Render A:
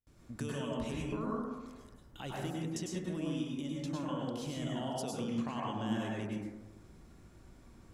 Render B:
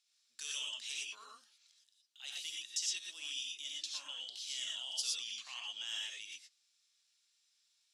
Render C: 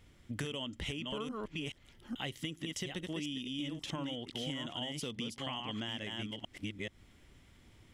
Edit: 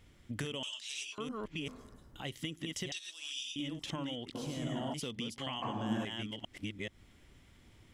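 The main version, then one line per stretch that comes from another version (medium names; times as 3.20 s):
C
0.63–1.18 s: from B
1.68–2.25 s: from A
2.92–3.56 s: from B
4.35–4.94 s: from A
5.62–6.05 s: from A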